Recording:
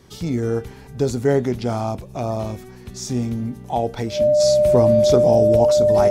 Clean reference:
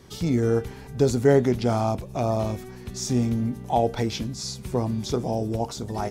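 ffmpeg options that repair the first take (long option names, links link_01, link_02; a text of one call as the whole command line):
ffmpeg -i in.wav -af "bandreject=frequency=600:width=30,asetnsamples=nb_out_samples=441:pad=0,asendcmd='4.4 volume volume -7dB',volume=0dB" out.wav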